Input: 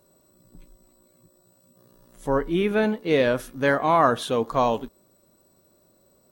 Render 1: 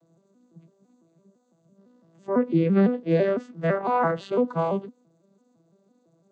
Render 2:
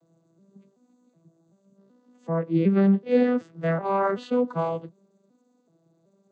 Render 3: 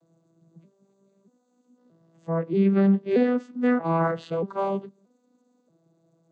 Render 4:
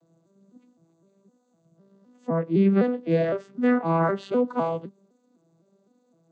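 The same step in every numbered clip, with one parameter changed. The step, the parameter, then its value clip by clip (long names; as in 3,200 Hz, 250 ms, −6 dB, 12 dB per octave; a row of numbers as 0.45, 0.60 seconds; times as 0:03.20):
vocoder with an arpeggio as carrier, a note every: 168, 378, 631, 255 milliseconds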